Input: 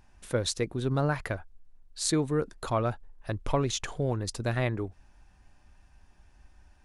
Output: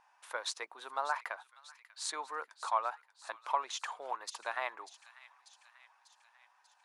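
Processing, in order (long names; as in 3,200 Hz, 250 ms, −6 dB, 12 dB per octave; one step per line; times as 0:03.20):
four-pole ladder high-pass 820 Hz, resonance 55%
in parallel at −1 dB: speech leveller within 5 dB 0.5 s
on the sum: high-shelf EQ 5,000 Hz −6.5 dB
delay with a high-pass on its return 592 ms, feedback 59%, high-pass 2,200 Hz, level −13.5 dB
tape wow and flutter 25 cents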